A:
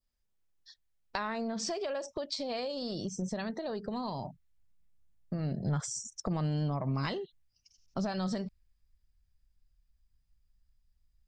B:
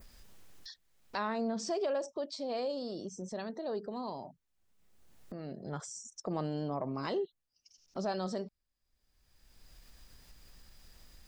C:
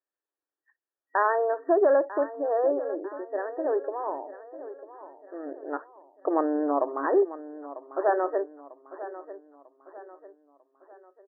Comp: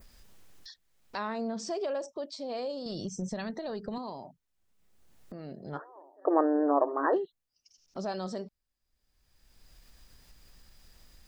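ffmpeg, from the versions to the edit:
-filter_complex "[1:a]asplit=3[a][b][c];[a]atrim=end=2.862[d];[0:a]atrim=start=2.858:end=3.982[e];[b]atrim=start=3.978:end=5.8[f];[2:a]atrim=start=5.74:end=7.18[g];[c]atrim=start=7.12[h];[d][e]acrossfade=d=0.004:c1=hsin:c2=hsin[i];[i][f]acrossfade=d=0.004:c1=hsin:c2=hsin[j];[j][g]acrossfade=d=0.06:c1=tri:c2=tri[k];[k][h]acrossfade=d=0.06:c1=tri:c2=tri"

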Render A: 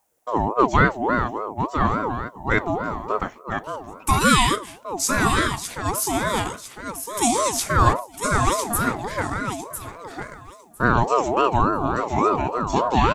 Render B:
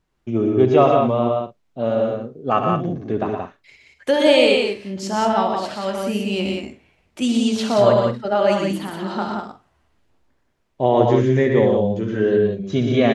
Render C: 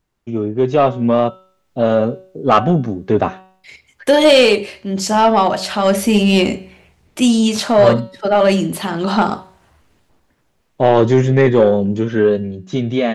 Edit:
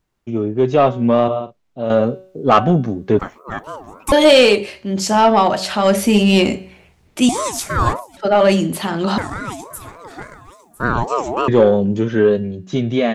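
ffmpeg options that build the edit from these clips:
-filter_complex "[0:a]asplit=3[a][b][c];[2:a]asplit=5[d][e][f][g][h];[d]atrim=end=1.282[i];[1:a]atrim=start=1.278:end=1.902[j];[e]atrim=start=1.898:end=3.192[k];[a]atrim=start=3.188:end=4.122[l];[f]atrim=start=4.118:end=7.292[m];[b]atrim=start=7.288:end=8.172[n];[g]atrim=start=8.168:end=9.182[o];[c]atrim=start=9.178:end=11.482[p];[h]atrim=start=11.478[q];[i][j]acrossfade=d=0.004:c1=hsin:c2=hsin[r];[r][k]acrossfade=d=0.004:c1=hsin:c2=hsin[s];[s][l]acrossfade=d=0.004:c1=hsin:c2=hsin[t];[t][m]acrossfade=d=0.004:c1=hsin:c2=hsin[u];[u][n]acrossfade=d=0.004:c1=hsin:c2=hsin[v];[v][o]acrossfade=d=0.004:c1=hsin:c2=hsin[w];[w][p]acrossfade=d=0.004:c1=hsin:c2=hsin[x];[x][q]acrossfade=d=0.004:c1=hsin:c2=hsin"

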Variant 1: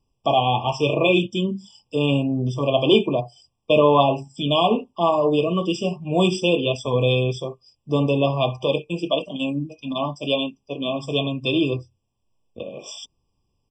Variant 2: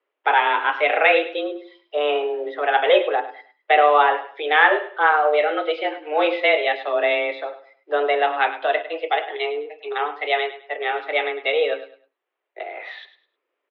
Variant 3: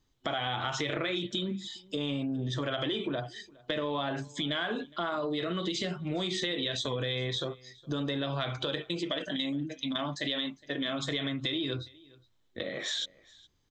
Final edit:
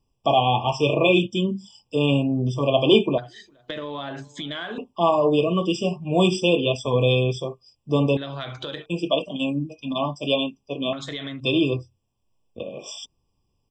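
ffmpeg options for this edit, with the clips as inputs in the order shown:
-filter_complex "[2:a]asplit=3[a][b][c];[0:a]asplit=4[d][e][f][g];[d]atrim=end=3.182[h];[a]atrim=start=3.178:end=4.782[i];[e]atrim=start=4.778:end=8.172[j];[b]atrim=start=8.168:end=8.862[k];[f]atrim=start=8.858:end=10.932[l];[c]atrim=start=10.928:end=11.402[m];[g]atrim=start=11.398[n];[h][i]acrossfade=d=0.004:c1=hsin:c2=hsin[o];[o][j]acrossfade=d=0.004:c1=hsin:c2=hsin[p];[p][k]acrossfade=d=0.004:c1=hsin:c2=hsin[q];[q][l]acrossfade=d=0.004:c1=hsin:c2=hsin[r];[r][m]acrossfade=d=0.004:c1=hsin:c2=hsin[s];[s][n]acrossfade=d=0.004:c1=hsin:c2=hsin"

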